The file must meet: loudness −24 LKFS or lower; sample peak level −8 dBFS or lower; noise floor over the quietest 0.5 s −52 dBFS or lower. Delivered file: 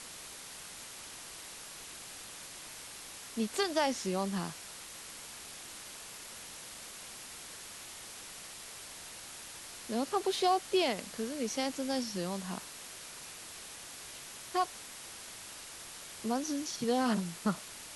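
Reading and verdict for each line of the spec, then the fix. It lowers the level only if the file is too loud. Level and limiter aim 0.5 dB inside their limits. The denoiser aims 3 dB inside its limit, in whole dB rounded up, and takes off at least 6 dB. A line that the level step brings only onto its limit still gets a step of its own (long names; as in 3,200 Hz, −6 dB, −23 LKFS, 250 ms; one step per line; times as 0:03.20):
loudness −37.5 LKFS: in spec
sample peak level −17.0 dBFS: in spec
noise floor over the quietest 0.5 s −48 dBFS: out of spec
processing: broadband denoise 7 dB, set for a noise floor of −48 dBFS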